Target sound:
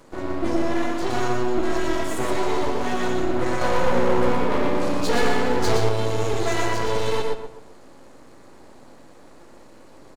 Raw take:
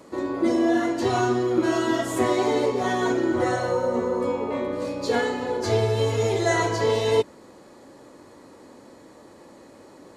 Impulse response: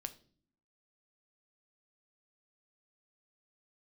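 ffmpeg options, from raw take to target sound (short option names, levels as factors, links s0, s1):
-filter_complex "[0:a]asplit=2[s0][s1];[s1]adelay=130,lowpass=f=1900:p=1,volume=0.299,asplit=2[s2][s3];[s3]adelay=130,lowpass=f=1900:p=1,volume=0.35,asplit=2[s4][s5];[s5]adelay=130,lowpass=f=1900:p=1,volume=0.35,asplit=2[s6][s7];[s7]adelay=130,lowpass=f=1900:p=1,volume=0.35[s8];[s0][s2][s4][s6][s8]amix=inputs=5:normalize=0,aeval=exprs='max(val(0),0)':c=same,asettb=1/sr,asplit=3[s9][s10][s11];[s9]atrim=end=3.614[s12];[s10]atrim=start=3.61:end=5.77,asetpts=PTS-STARTPTS,afade=t=in:d=0.004:c=qsin,afade=t=out:st=2.156:d=0.004:c=qsin,acontrast=90[s13];[s11]atrim=start=5.766[s14];[s12][s13]acrossfade=d=0.004:c1=hsin:c2=qsin[s15];[s15][s14]acrossfade=d=0.004:c1=qsin:c2=hsin,asoftclip=type=tanh:threshold=0.224,asplit=2[s16][s17];[1:a]atrim=start_sample=2205,adelay=119[s18];[s17][s18]afir=irnorm=-1:irlink=0,volume=0.891[s19];[s16][s19]amix=inputs=2:normalize=0,volume=1.19"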